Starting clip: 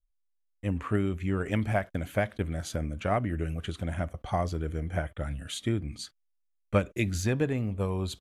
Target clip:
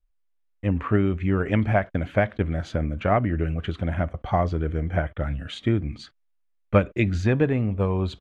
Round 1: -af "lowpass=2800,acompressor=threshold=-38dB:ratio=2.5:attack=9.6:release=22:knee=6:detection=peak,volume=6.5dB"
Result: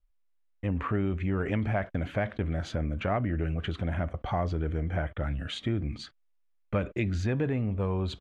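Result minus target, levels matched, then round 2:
downward compressor: peak gain reduction +11.5 dB
-af "lowpass=2800,volume=6.5dB"

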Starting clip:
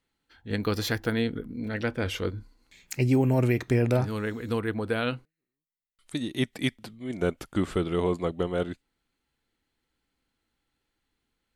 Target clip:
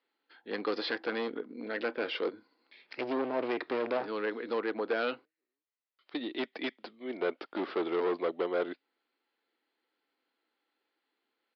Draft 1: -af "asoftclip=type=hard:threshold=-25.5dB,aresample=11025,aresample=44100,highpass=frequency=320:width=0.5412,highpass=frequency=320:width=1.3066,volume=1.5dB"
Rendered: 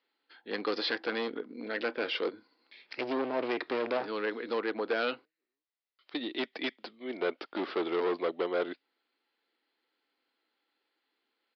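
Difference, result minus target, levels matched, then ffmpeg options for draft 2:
4,000 Hz band +3.0 dB
-af "asoftclip=type=hard:threshold=-25.5dB,aresample=11025,aresample=44100,highpass=frequency=320:width=0.5412,highpass=frequency=320:width=1.3066,highshelf=frequency=3000:gain=-6.5,volume=1.5dB"

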